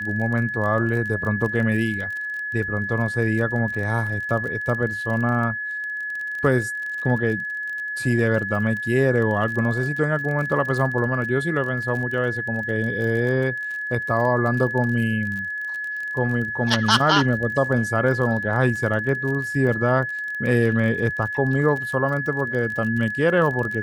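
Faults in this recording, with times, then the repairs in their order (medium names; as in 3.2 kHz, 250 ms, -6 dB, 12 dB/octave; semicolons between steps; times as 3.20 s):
crackle 31 per s -29 dBFS
whine 1.7 kHz -26 dBFS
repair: de-click; band-stop 1.7 kHz, Q 30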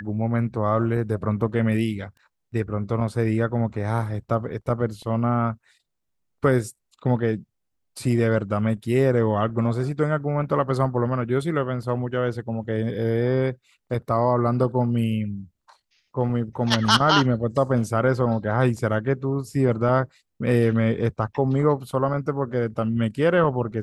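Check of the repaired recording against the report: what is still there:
nothing left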